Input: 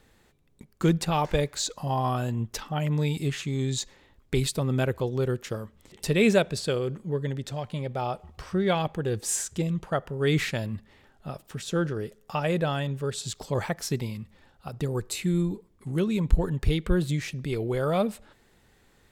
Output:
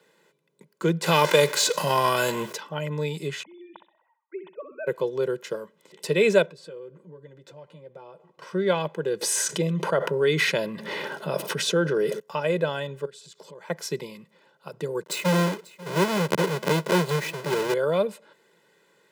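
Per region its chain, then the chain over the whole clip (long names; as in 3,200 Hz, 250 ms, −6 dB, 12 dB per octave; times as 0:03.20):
0:01.03–0:02.53: spectral envelope flattened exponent 0.6 + envelope flattener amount 50%
0:03.43–0:04.87: three sine waves on the formant tracks + resonant band-pass 880 Hz, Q 3.5 + flutter between parallel walls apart 10.9 metres, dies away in 0.4 s
0:06.46–0:08.42: high-shelf EQ 2,200 Hz −9.5 dB + downward compressor 4 to 1, threshold −41 dBFS + notch comb filter 210 Hz
0:09.21–0:12.20: notch filter 7,400 Hz, Q 7.8 + envelope flattener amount 70%
0:13.05–0:13.70: downward compressor 16 to 1, threshold −41 dBFS + highs frequency-modulated by the lows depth 0.11 ms
0:15.03–0:17.74: each half-wave held at its own peak + single-tap delay 541 ms −20 dB
whole clip: Butterworth high-pass 160 Hz 48 dB per octave; high-shelf EQ 5,500 Hz −5.5 dB; comb filter 2 ms, depth 75%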